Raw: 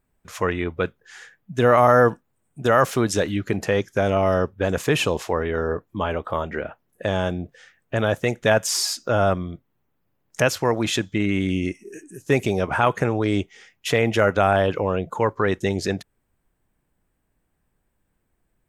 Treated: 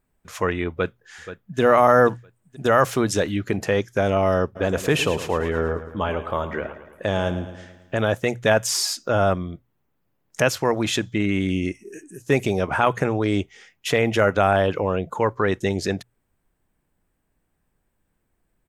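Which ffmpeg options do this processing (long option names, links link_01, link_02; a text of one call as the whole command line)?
ffmpeg -i in.wav -filter_complex "[0:a]asplit=2[link_01][link_02];[link_02]afade=type=in:start_time=0.7:duration=0.01,afade=type=out:start_time=1.6:duration=0.01,aecho=0:1:480|960|1440|1920:0.237137|0.0829981|0.0290493|0.0101673[link_03];[link_01][link_03]amix=inputs=2:normalize=0,asplit=3[link_04][link_05][link_06];[link_04]afade=type=out:start_time=4.55:duration=0.02[link_07];[link_05]aecho=1:1:110|220|330|440|550|660:0.237|0.13|0.0717|0.0395|0.0217|0.0119,afade=type=in:start_time=4.55:duration=0.02,afade=type=out:start_time=7.99:duration=0.02[link_08];[link_06]afade=type=in:start_time=7.99:duration=0.02[link_09];[link_07][link_08][link_09]amix=inputs=3:normalize=0,bandreject=frequency=60:width_type=h:width=6,bandreject=frequency=120:width_type=h:width=6" out.wav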